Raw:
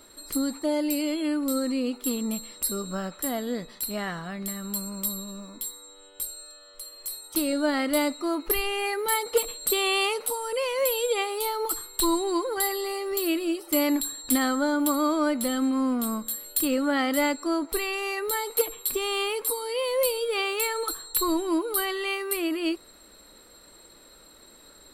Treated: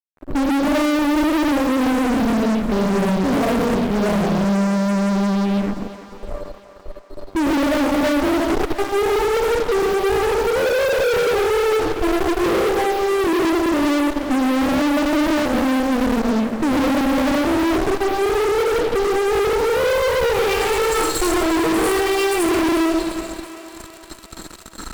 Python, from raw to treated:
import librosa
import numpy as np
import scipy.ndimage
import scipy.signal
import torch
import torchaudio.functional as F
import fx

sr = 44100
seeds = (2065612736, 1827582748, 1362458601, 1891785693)

p1 = fx.env_phaser(x, sr, low_hz=440.0, high_hz=3700.0, full_db=-29.0)
p2 = fx.filter_sweep_lowpass(p1, sr, from_hz=570.0, to_hz=5700.0, start_s=19.14, end_s=20.92, q=0.85)
p3 = fx.sample_hold(p2, sr, seeds[0], rate_hz=14000.0, jitter_pct=0)
p4 = p2 + F.gain(torch.from_numpy(p3), -12.0).numpy()
p5 = 10.0 ** (-20.5 / 20.0) * np.tanh(p4 / 10.0 ** (-20.5 / 20.0))
p6 = fx.peak_eq(p5, sr, hz=1800.0, db=-8.5, octaves=2.5)
p7 = fx.rev_freeverb(p6, sr, rt60_s=0.86, hf_ratio=0.9, predelay_ms=50, drr_db=-6.0)
p8 = fx.fuzz(p7, sr, gain_db=40.0, gate_db=-46.0)
p9 = p8 + fx.echo_thinned(p8, sr, ms=347, feedback_pct=62, hz=290.0, wet_db=-12.5, dry=0)
y = F.gain(torch.from_numpy(p9), -3.5).numpy()